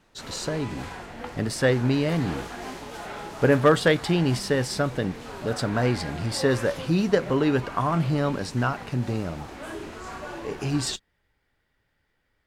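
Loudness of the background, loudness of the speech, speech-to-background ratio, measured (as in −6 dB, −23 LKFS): −38.0 LKFS, −25.0 LKFS, 13.0 dB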